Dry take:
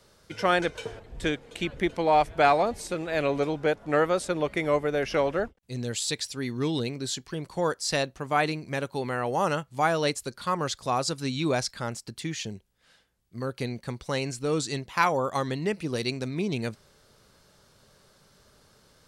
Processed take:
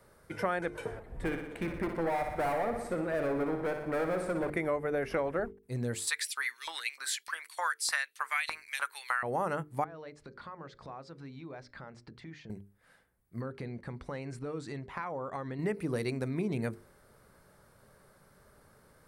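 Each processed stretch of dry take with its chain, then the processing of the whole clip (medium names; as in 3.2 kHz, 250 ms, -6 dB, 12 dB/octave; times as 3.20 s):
1.19–4.50 s: low-pass 2.9 kHz 6 dB/octave + hard clipper -26.5 dBFS + feedback delay 60 ms, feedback 58%, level -7 dB
6.07–9.23 s: high-pass 400 Hz 6 dB/octave + tilt shelf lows -7.5 dB, about 730 Hz + LFO high-pass saw up 3.3 Hz 980–3900 Hz
9.84–12.50 s: low-pass 5 kHz 24 dB/octave + compression, threshold -42 dBFS + hum notches 60/120/180/240/300/360/420/480/540/600 Hz
13.41–15.59 s: low-pass 5.2 kHz + compression, threshold -34 dBFS
whole clip: high-order bell 4.4 kHz -12 dB; hum notches 50/100/150/200/250/300/350/400/450 Hz; compression, threshold -28 dBFS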